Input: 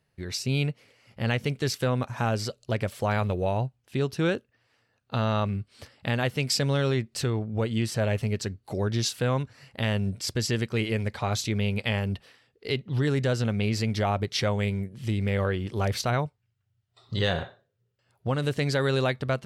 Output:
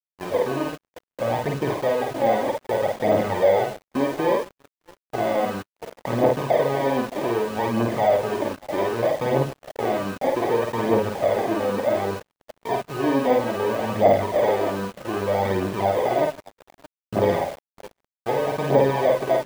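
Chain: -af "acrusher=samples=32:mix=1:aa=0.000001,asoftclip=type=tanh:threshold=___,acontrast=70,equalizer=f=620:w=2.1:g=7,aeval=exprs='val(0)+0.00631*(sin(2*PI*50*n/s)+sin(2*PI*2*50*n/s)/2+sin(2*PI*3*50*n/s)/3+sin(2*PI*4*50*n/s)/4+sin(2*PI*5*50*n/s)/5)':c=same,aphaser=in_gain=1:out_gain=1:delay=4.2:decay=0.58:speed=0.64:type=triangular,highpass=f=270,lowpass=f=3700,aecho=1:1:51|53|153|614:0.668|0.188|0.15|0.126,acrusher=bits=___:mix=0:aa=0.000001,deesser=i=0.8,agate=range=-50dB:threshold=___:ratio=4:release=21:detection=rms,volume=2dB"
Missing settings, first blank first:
-25.5dB, 5, -36dB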